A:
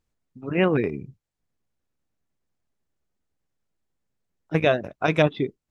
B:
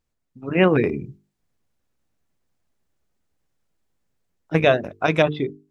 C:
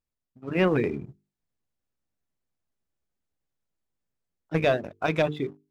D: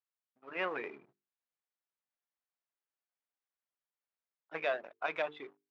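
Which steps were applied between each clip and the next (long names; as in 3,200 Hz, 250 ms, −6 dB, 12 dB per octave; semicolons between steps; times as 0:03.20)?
mains-hum notches 50/100/150/200/250/300/350/400/450 Hz; automatic gain control gain up to 6 dB
leveller curve on the samples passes 1; level −9 dB
in parallel at −11.5 dB: hard clipping −27.5 dBFS, distortion −6 dB; on the sum: band-pass filter 780–2,800 Hz; level −6 dB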